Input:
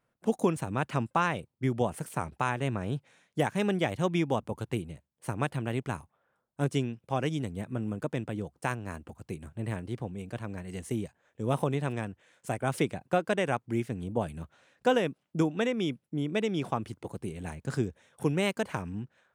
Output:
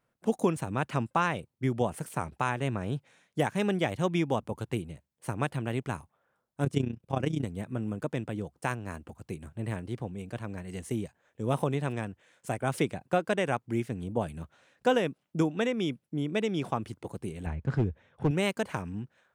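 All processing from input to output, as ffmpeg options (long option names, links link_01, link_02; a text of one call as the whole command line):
ffmpeg -i in.wav -filter_complex "[0:a]asettb=1/sr,asplit=3[link_01][link_02][link_03];[link_01]atrim=end=6.644[link_04];[link_02]atrim=start=6.64:end=7.45,asetpts=PTS-STARTPTS,afade=type=in:duration=0.004:curve=qsin,afade=type=out:start_time=0.806:duration=0.004:curve=qsin,lowshelf=frequency=460:gain=5.5,tremolo=f=30:d=0.788[link_05];[link_03]atrim=start=7.446[link_06];[link_04][link_05]acrossfade=duration=0.004:curve1=hsin:curve2=qsin[link_07];[link_07][link_06]acrossfade=duration=0.004:curve1=qsin:curve2=hsin,asettb=1/sr,asplit=3[link_08][link_09][link_10];[link_08]atrim=end=17.464[link_11];[link_09]atrim=start=17.46:end=18.31,asetpts=PTS-STARTPTS,afade=type=in:duration=0.004:curve=qsin,afade=type=out:start_time=0.846:duration=0.004:curve=qsin,lowpass=2800,equalizer=frequency=64:width_type=o:width=2.1:gain=11,asoftclip=type=hard:threshold=-19dB[link_12];[link_10]atrim=start=18.306[link_13];[link_11][link_12]acrossfade=duration=0.004:curve1=hsin:curve2=qsin[link_14];[link_14][link_13]acrossfade=duration=0.004:curve1=qsin:curve2=hsin" out.wav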